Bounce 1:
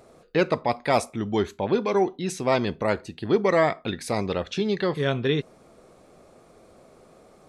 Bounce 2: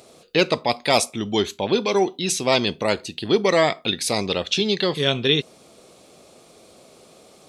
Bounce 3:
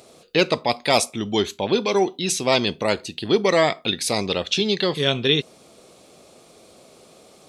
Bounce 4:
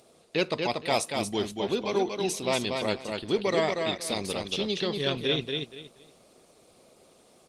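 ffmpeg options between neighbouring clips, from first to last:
-af "highpass=f=130:p=1,highshelf=f=2.3k:t=q:w=1.5:g=8.5,volume=3dB"
-af anull
-af "aecho=1:1:236|472|708:0.596|0.149|0.0372,volume=-8dB" -ar 48000 -c:a libopus -b:a 24k

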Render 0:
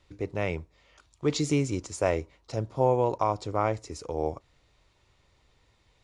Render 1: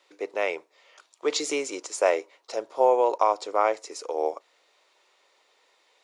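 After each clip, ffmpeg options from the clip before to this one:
-af "highpass=f=420:w=0.5412,highpass=f=420:w=1.3066,volume=5dB"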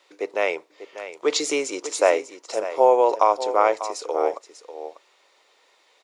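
-af "aecho=1:1:594:0.237,volume=4dB"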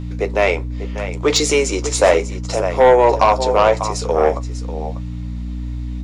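-af "aeval=exprs='val(0)+0.0251*(sin(2*PI*60*n/s)+sin(2*PI*2*60*n/s)/2+sin(2*PI*3*60*n/s)/3+sin(2*PI*4*60*n/s)/4+sin(2*PI*5*60*n/s)/5)':c=same,flanger=delay=9.9:depth=4.4:regen=-41:speed=0.78:shape=triangular,aeval=exprs='0.422*(cos(1*acos(clip(val(0)/0.422,-1,1)))-cos(1*PI/2))+0.075*(cos(5*acos(clip(val(0)/0.422,-1,1)))-cos(5*PI/2))':c=same,volume=6.5dB"

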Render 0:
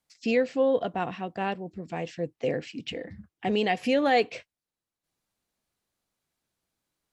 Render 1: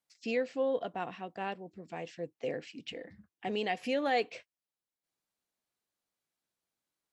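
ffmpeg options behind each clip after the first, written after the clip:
-af "lowshelf=f=140:g=-12,volume=-6.5dB"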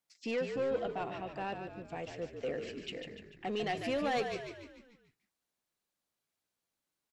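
-filter_complex "[0:a]asoftclip=type=tanh:threshold=-27.5dB,asplit=2[a][b];[b]asplit=6[c][d][e][f][g][h];[c]adelay=147,afreqshift=-50,volume=-7dB[i];[d]adelay=294,afreqshift=-100,volume=-13dB[j];[e]adelay=441,afreqshift=-150,volume=-19dB[k];[f]adelay=588,afreqshift=-200,volume=-25.1dB[l];[g]adelay=735,afreqshift=-250,volume=-31.1dB[m];[h]adelay=882,afreqshift=-300,volume=-37.1dB[n];[i][j][k][l][m][n]amix=inputs=6:normalize=0[o];[a][o]amix=inputs=2:normalize=0"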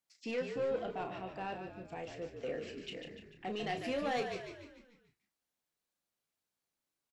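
-filter_complex "[0:a]asplit=2[a][b];[b]adelay=32,volume=-7.5dB[c];[a][c]amix=inputs=2:normalize=0,volume=-3dB"

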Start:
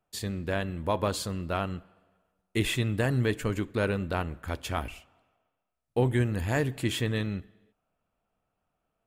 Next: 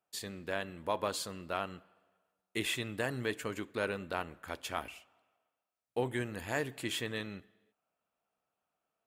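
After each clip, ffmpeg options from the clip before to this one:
-af "highpass=f=460:p=1,volume=-3.5dB"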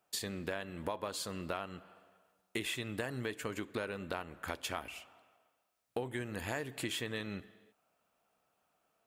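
-af "acompressor=threshold=-44dB:ratio=6,volume=8.5dB"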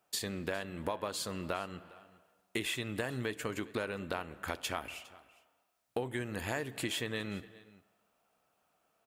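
-af "aecho=1:1:407:0.0891,volume=2dB"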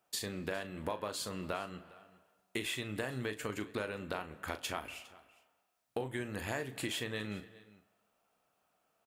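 -filter_complex "[0:a]asplit=2[a][b];[b]adelay=38,volume=-10.5dB[c];[a][c]amix=inputs=2:normalize=0,volume=-2dB"

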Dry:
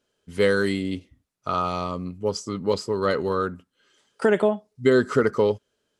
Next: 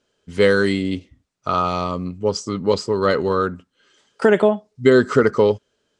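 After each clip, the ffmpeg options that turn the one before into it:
-af "lowpass=f=8.3k:w=0.5412,lowpass=f=8.3k:w=1.3066,volume=5dB"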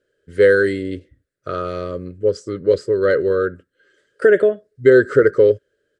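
-af "firequalizer=gain_entry='entry(130,0);entry(220,-10);entry(330,4);entry(560,6);entry(800,-23);entry(1600,7);entry(2400,-8);entry(4300,-7);entry(6100,-11);entry(9200,-1)':delay=0.05:min_phase=1,volume=-1.5dB"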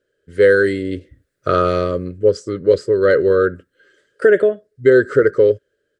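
-af "dynaudnorm=f=120:g=7:m=13dB,volume=-1dB"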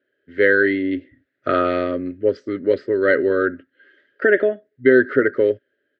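-af "highpass=170,equalizer=f=170:t=q:w=4:g=-10,equalizer=f=260:t=q:w=4:g=8,equalizer=f=470:t=q:w=4:g=-9,equalizer=f=710:t=q:w=4:g=3,equalizer=f=1.1k:t=q:w=4:g=-8,equalizer=f=1.9k:t=q:w=4:g=7,lowpass=f=3.4k:w=0.5412,lowpass=f=3.4k:w=1.3066"

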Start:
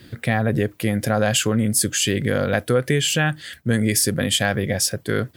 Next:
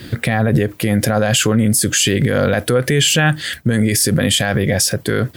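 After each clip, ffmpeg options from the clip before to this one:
-af "alimiter=level_in=16.5dB:limit=-1dB:release=50:level=0:latency=1,volume=-4.5dB"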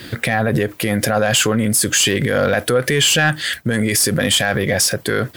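-filter_complex "[0:a]asplit=2[a][b];[b]highpass=f=720:p=1,volume=8dB,asoftclip=type=tanh:threshold=-5dB[c];[a][c]amix=inputs=2:normalize=0,lowpass=f=1.7k:p=1,volume=-6dB,crystalizer=i=2.5:c=0"

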